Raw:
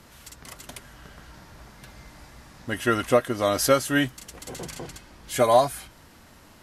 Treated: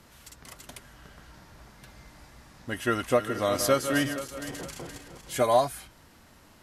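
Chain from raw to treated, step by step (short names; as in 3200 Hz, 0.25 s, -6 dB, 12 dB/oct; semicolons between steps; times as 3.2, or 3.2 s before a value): 2.87–5.45 regenerating reverse delay 0.235 s, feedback 56%, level -9 dB; gain -4 dB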